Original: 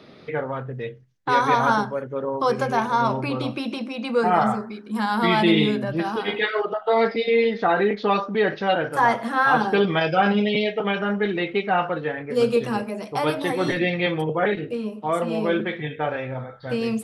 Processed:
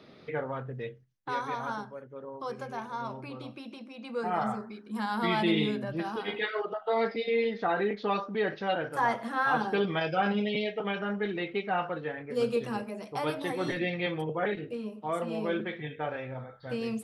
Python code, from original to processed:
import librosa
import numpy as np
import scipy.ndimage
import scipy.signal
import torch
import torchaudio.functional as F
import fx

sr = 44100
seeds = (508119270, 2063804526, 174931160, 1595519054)

y = fx.gain(x, sr, db=fx.line((0.84, -6.5), (1.52, -15.5), (3.85, -15.5), (4.64, -8.5)))